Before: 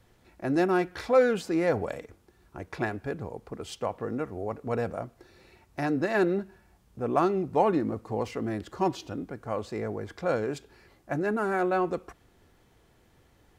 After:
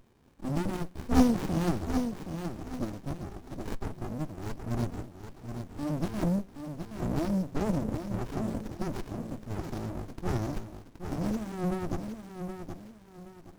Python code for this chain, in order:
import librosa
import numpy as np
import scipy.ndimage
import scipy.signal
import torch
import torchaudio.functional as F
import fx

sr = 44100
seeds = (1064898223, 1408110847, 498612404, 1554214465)

y = scipy.signal.sosfilt(scipy.signal.cheby1(3, 1.0, [570.0, 6200.0], 'bandstop', fs=sr, output='sos'), x)
y = fx.riaa(y, sr, side='recording')
y = fx.formant_shift(y, sr, semitones=-3)
y = fx.band_shelf(y, sr, hz=1700.0, db=-11.0, octaves=1.7)
y = fx.echo_feedback(y, sr, ms=772, feedback_pct=32, wet_db=-7.5)
y = fx.running_max(y, sr, window=65)
y = y * 10.0 ** (5.5 / 20.0)